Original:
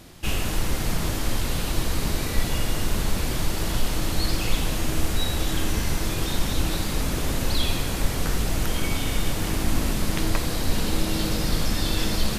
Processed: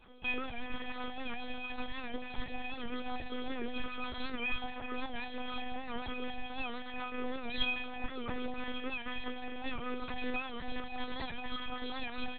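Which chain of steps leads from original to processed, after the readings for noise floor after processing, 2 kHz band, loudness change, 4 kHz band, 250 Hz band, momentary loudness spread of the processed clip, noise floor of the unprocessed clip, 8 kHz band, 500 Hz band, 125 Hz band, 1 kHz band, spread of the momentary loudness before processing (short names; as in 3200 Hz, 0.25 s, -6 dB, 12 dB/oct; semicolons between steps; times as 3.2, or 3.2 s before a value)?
-43 dBFS, -6.5 dB, -13.0 dB, -13.0 dB, -12.5 dB, 6 LU, -28 dBFS, under -40 dB, -11.0 dB, -27.5 dB, -7.5 dB, 2 LU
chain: CVSD 64 kbps; HPF 43 Hz 6 dB/oct; reverb removal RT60 1.1 s; metallic resonator 380 Hz, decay 0.63 s, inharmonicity 0.03; on a send: feedback echo 83 ms, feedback 55%, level -23 dB; on the sum: monotone LPC vocoder at 8 kHz 250 Hz; record warp 78 rpm, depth 100 cents; gain +14 dB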